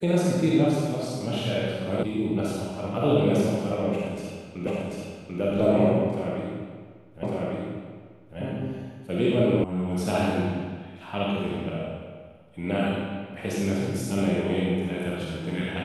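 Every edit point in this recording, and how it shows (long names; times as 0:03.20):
0:02.03: cut off before it has died away
0:04.67: the same again, the last 0.74 s
0:07.23: the same again, the last 1.15 s
0:09.64: cut off before it has died away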